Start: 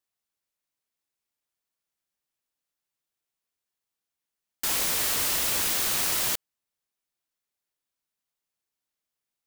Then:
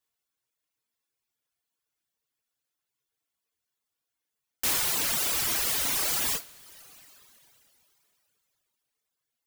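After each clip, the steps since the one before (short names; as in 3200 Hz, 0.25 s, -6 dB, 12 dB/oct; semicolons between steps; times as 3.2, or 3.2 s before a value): two-slope reverb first 0.32 s, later 3.4 s, from -22 dB, DRR -1.5 dB; wrapped overs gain 19.5 dB; reverb removal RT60 1.1 s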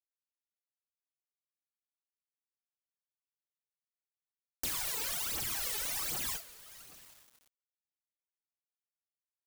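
phaser 1.3 Hz, delay 2.4 ms, feedback 63%; compressor 3:1, threshold -29 dBFS, peak gain reduction 6.5 dB; requantised 8-bit, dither none; gain -5.5 dB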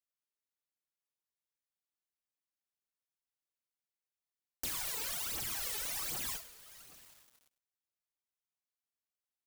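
echo 0.103 s -17 dB; gain -2.5 dB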